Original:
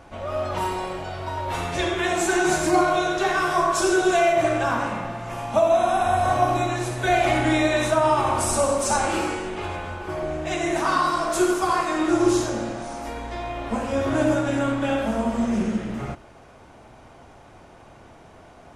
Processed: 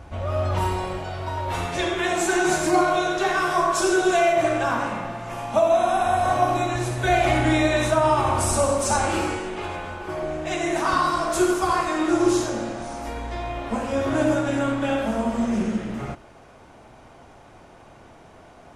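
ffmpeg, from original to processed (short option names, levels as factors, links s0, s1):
-af "asetnsamples=n=441:p=0,asendcmd='0.99 equalizer g 4;1.66 equalizer g -4;6.75 equalizer g 7;9.38 equalizer g -4.5;10.93 equalizer g 6.5;11.87 equalizer g -4.5;12.8 equalizer g 4.5;13.59 equalizer g -2',equalizer=f=70:t=o:w=1.5:g=14"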